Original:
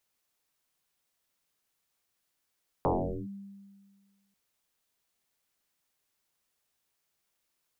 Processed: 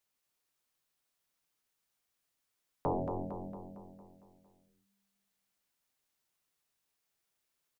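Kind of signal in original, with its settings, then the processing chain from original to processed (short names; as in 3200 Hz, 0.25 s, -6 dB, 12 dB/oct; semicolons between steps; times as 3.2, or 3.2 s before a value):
FM tone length 1.49 s, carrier 198 Hz, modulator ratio 0.45, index 9.6, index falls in 0.43 s linear, decay 1.69 s, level -22 dB
flange 0.74 Hz, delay 6.2 ms, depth 2.6 ms, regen -72%; on a send: feedback echo 0.228 s, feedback 54%, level -6.5 dB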